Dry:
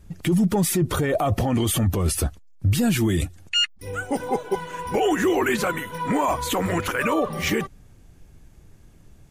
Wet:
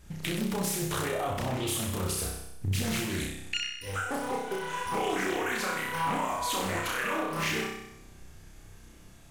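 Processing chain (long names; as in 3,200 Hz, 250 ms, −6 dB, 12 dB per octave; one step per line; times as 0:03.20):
tilt shelving filter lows −4.5 dB, about 690 Hz
downward compressor 5 to 1, threshold −31 dBFS, peak gain reduction 15 dB
flutter between parallel walls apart 5.4 metres, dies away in 0.86 s
highs frequency-modulated by the lows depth 0.69 ms
level −1.5 dB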